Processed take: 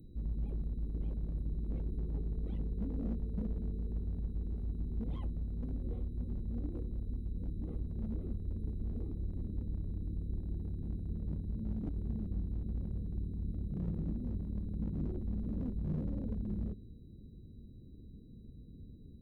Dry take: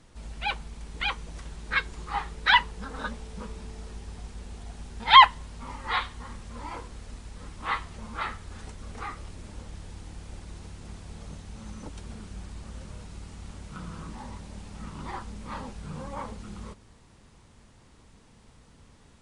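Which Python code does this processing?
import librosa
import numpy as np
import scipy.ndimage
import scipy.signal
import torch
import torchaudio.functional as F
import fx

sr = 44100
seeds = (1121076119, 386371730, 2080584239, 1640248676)

y = x + 10.0 ** (-32.0 / 20.0) * np.sin(2.0 * np.pi * 3900.0 * np.arange(len(x)) / sr)
y = scipy.signal.sosfilt(scipy.signal.cheby2(4, 50, [870.0, 8200.0], 'bandstop', fs=sr, output='sos'), y)
y = fx.clip_asym(y, sr, top_db=-39.0, bottom_db=-30.5)
y = F.gain(torch.from_numpy(y), 5.0).numpy()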